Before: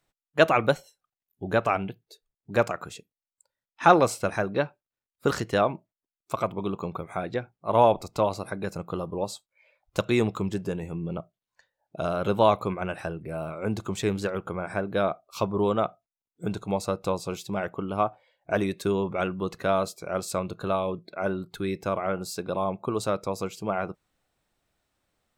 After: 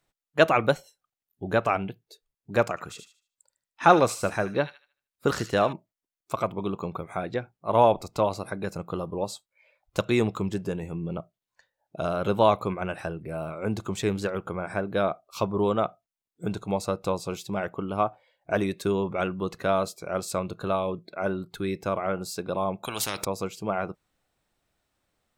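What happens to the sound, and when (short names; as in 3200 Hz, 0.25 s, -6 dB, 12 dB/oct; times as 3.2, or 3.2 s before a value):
2.69–5.73 thin delay 76 ms, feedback 30%, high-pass 2300 Hz, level -6.5 dB
22.83–23.25 spectral compressor 4:1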